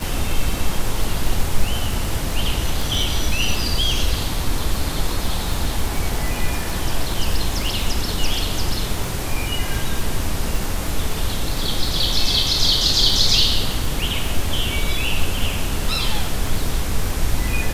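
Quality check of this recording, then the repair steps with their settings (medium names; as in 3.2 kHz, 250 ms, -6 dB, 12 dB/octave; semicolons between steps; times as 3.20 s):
crackle 46 per s -22 dBFS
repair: de-click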